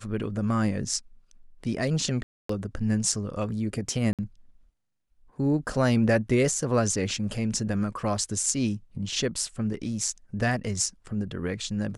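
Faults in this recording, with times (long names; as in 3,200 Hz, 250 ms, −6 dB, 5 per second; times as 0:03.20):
0:02.23–0:02.49: drop-out 264 ms
0:04.13–0:04.19: drop-out 57 ms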